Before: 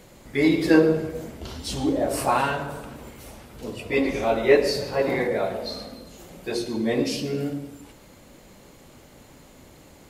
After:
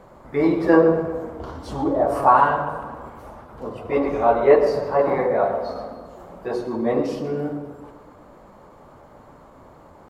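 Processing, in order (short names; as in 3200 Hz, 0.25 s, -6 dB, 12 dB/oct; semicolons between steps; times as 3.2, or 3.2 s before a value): EQ curve 300 Hz 0 dB, 1100 Hz +10 dB, 2400 Hz -10 dB, 8900 Hz -15 dB; pitch shift +0.5 st; on a send: tape echo 0.124 s, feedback 66%, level -12.5 dB, low-pass 2600 Hz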